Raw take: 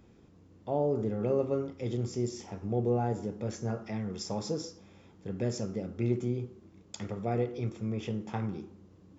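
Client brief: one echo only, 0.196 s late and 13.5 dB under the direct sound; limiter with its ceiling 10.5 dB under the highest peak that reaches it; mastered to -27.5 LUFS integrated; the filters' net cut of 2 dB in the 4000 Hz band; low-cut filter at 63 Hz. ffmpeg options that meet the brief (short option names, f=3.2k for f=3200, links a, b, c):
-af "highpass=63,equalizer=f=4k:t=o:g=-3,alimiter=level_in=4dB:limit=-24dB:level=0:latency=1,volume=-4dB,aecho=1:1:196:0.211,volume=10.5dB"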